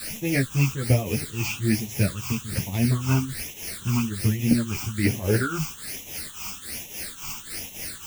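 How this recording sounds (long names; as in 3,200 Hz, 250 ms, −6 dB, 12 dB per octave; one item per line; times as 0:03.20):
a quantiser's noise floor 6 bits, dither triangular
phaser sweep stages 8, 1.2 Hz, lowest notch 520–1,400 Hz
tremolo triangle 3.6 Hz, depth 80%
a shimmering, thickened sound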